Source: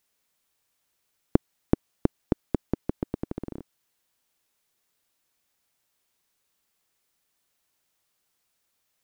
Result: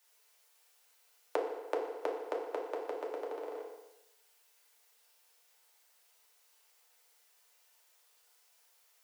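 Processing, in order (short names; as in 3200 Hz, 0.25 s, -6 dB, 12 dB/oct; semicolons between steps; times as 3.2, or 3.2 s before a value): steep high-pass 440 Hz 48 dB/oct; FDN reverb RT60 0.89 s, low-frequency decay 0.8×, high-frequency decay 0.95×, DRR -4 dB; compressor 1.5:1, threshold -44 dBFS, peak gain reduction 7.5 dB; gain +2 dB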